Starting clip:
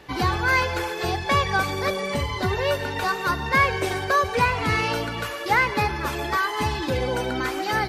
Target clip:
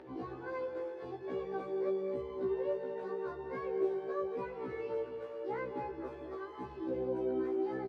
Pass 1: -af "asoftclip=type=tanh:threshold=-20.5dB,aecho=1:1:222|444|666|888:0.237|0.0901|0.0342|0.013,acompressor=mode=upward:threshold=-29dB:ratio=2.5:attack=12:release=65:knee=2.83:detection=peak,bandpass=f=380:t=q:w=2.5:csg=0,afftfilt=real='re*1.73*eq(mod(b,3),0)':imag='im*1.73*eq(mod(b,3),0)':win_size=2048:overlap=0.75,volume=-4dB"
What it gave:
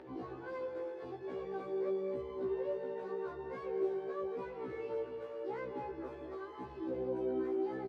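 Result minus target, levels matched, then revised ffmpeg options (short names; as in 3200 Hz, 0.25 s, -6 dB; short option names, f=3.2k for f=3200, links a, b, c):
soft clip: distortion +9 dB
-af "asoftclip=type=tanh:threshold=-12.5dB,aecho=1:1:222|444|666|888:0.237|0.0901|0.0342|0.013,acompressor=mode=upward:threshold=-29dB:ratio=2.5:attack=12:release=65:knee=2.83:detection=peak,bandpass=f=380:t=q:w=2.5:csg=0,afftfilt=real='re*1.73*eq(mod(b,3),0)':imag='im*1.73*eq(mod(b,3),0)':win_size=2048:overlap=0.75,volume=-4dB"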